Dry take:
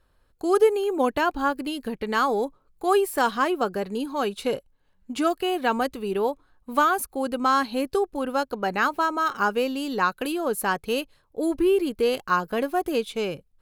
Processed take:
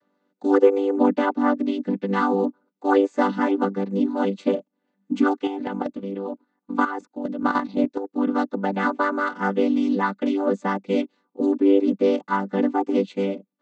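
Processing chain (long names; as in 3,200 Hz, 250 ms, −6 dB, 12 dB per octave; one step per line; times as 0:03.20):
channel vocoder with a chord as carrier major triad, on G3
0:05.47–0:08.13: output level in coarse steps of 11 dB
level +4 dB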